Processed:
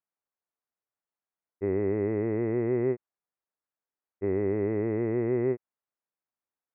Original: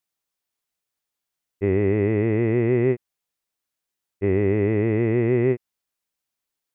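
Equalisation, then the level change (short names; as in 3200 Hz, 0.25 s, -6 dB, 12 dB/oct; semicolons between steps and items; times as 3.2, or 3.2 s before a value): Gaussian blur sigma 6 samples; tilt +3 dB/oct; -1.5 dB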